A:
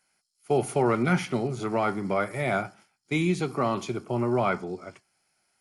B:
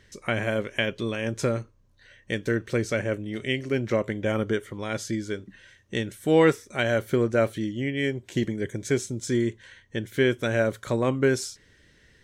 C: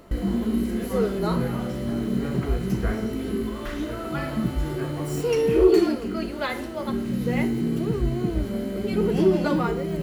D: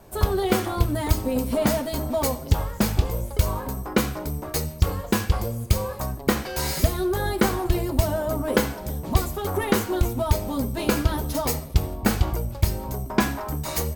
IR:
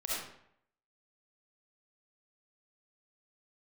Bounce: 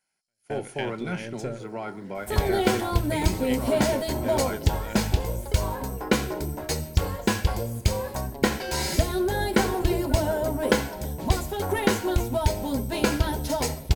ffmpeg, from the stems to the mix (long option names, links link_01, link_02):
-filter_complex "[0:a]volume=-8dB,asplit=2[link_01][link_02];[1:a]aeval=exprs='if(lt(val(0),0),0.708*val(0),val(0))':channel_layout=same,volume=-7.5dB[link_03];[2:a]lowpass=1800,acrusher=bits=8:mode=log:mix=0:aa=0.000001,highpass=frequency=240:width=0.5412,highpass=frequency=240:width=1.3066,adelay=650,volume=-11dB,afade=type=in:start_time=8.37:duration=0.44:silence=0.316228[link_04];[3:a]acrossover=split=9900[link_05][link_06];[link_06]acompressor=threshold=-44dB:ratio=4:attack=1:release=60[link_07];[link_05][link_07]amix=inputs=2:normalize=0,lowshelf=frequency=370:gain=-3.5,adelay=2150,volume=1dB[link_08];[link_02]apad=whole_len=539361[link_09];[link_03][link_09]sidechaingate=range=-54dB:threshold=-57dB:ratio=16:detection=peak[link_10];[link_01][link_10][link_04][link_08]amix=inputs=4:normalize=0,asuperstop=centerf=1200:order=4:qfactor=6.3"